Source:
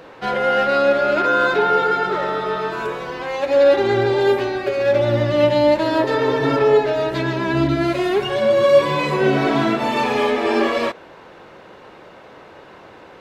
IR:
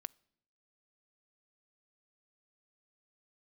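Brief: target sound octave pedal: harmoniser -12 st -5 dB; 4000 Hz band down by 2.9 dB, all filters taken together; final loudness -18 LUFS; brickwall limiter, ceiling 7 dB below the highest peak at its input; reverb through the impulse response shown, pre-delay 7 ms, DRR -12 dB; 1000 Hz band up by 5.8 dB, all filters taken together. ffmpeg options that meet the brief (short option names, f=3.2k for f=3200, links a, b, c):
-filter_complex "[0:a]equalizer=f=1k:t=o:g=8,equalizer=f=4k:t=o:g=-4.5,alimiter=limit=-7dB:level=0:latency=1,asplit=2[a][b];[1:a]atrim=start_sample=2205,adelay=7[c];[b][c]afir=irnorm=-1:irlink=0,volume=16.5dB[d];[a][d]amix=inputs=2:normalize=0,asplit=2[e][f];[f]asetrate=22050,aresample=44100,atempo=2,volume=-5dB[g];[e][g]amix=inputs=2:normalize=0,volume=-16dB"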